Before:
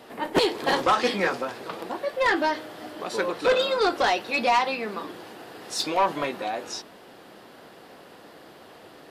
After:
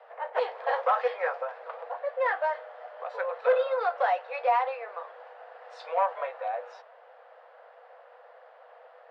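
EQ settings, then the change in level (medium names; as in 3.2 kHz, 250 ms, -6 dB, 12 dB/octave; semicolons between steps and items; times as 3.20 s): rippled Chebyshev high-pass 480 Hz, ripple 3 dB; low-pass 1.3 kHz 12 dB/octave; 0.0 dB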